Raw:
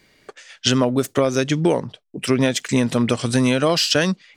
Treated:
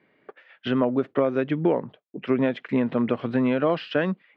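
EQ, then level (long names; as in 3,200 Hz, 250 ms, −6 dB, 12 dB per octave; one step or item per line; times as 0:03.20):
high-pass filter 190 Hz 12 dB per octave
low-pass filter 3,100 Hz 12 dB per octave
high-frequency loss of the air 490 metres
−2.0 dB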